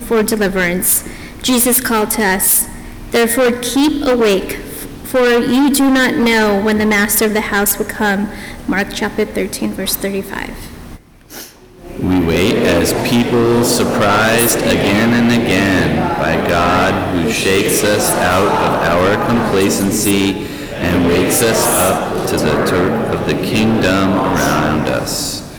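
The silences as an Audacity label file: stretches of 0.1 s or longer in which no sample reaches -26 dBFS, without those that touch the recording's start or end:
10.950000	11.320000	silence
11.460000	11.840000	silence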